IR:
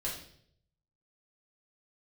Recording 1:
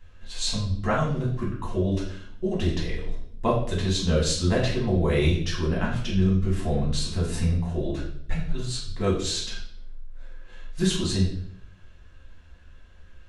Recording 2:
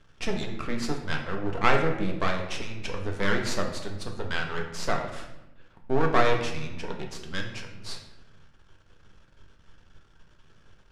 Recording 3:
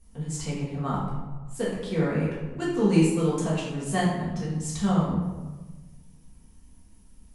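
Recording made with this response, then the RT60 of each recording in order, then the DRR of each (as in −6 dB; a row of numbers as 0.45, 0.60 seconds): 1; 0.65, 0.95, 1.3 seconds; −5.5, 1.5, −8.0 decibels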